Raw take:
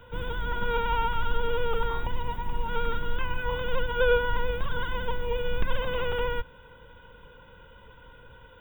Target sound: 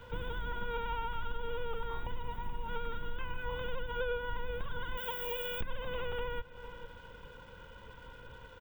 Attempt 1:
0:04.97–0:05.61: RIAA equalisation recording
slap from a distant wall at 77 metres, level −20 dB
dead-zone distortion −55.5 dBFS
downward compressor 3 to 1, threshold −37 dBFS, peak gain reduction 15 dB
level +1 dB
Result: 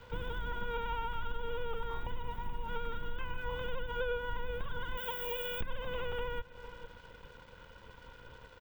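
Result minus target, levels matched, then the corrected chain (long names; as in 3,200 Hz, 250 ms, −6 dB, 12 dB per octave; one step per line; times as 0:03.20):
dead-zone distortion: distortion +7 dB
0:04.97–0:05.61: RIAA equalisation recording
slap from a distant wall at 77 metres, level −20 dB
dead-zone distortion −63 dBFS
downward compressor 3 to 1, threshold −37 dBFS, peak gain reduction 15 dB
level +1 dB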